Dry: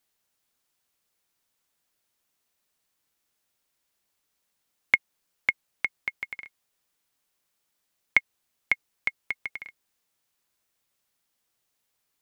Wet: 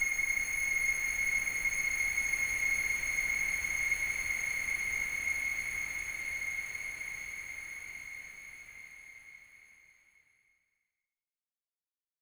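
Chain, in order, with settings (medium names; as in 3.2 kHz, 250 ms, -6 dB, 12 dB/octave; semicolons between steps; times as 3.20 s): fuzz box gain 40 dB, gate -47 dBFS; Paulstretch 13×, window 1.00 s, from 6.10 s; trim -8.5 dB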